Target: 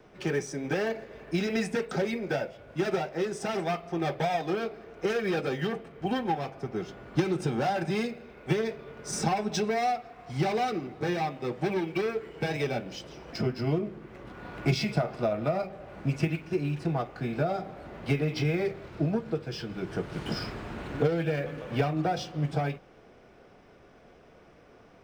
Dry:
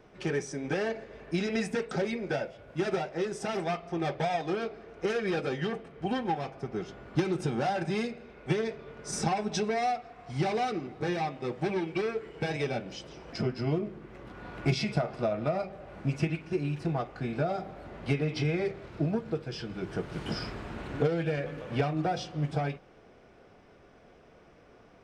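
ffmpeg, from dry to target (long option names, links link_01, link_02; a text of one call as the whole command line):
ffmpeg -i in.wav -filter_complex "[0:a]acrossover=split=140|1100|1500[link_01][link_02][link_03][link_04];[link_04]acrusher=bits=5:mode=log:mix=0:aa=0.000001[link_05];[link_01][link_02][link_03][link_05]amix=inputs=4:normalize=0,bandreject=frequency=47.76:width_type=h:width=4,bandreject=frequency=95.52:width_type=h:width=4,volume=1.5dB" out.wav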